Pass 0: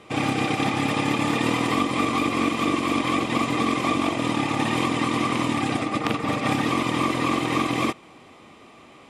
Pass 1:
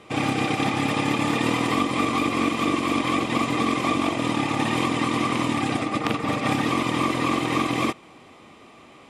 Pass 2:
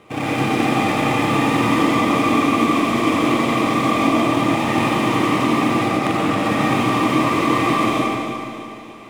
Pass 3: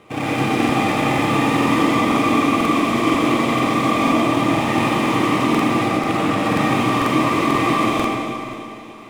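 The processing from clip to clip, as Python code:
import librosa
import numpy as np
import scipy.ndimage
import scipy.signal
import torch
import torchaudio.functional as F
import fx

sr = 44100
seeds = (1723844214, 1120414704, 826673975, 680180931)

y1 = x
y2 = scipy.ndimage.median_filter(y1, 9, mode='constant')
y2 = fx.echo_feedback(y2, sr, ms=296, feedback_pct=51, wet_db=-11.0)
y2 = fx.rev_freeverb(y2, sr, rt60_s=1.8, hf_ratio=0.95, predelay_ms=55, drr_db=-5.0)
y3 = fx.buffer_crackle(y2, sr, first_s=0.6, period_s=0.49, block=2048, kind='repeat')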